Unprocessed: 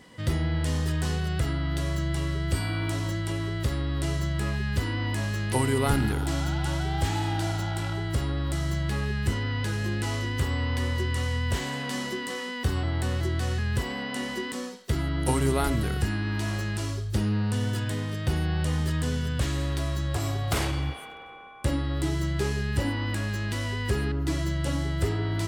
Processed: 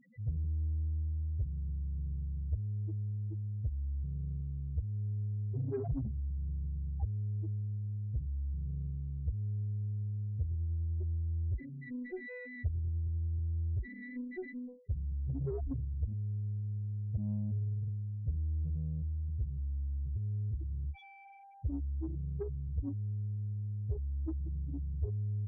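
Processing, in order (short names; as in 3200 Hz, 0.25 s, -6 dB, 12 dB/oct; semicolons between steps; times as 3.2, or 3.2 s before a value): loudest bins only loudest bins 2; added harmonics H 8 -30 dB, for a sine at -19 dBFS; gain -4.5 dB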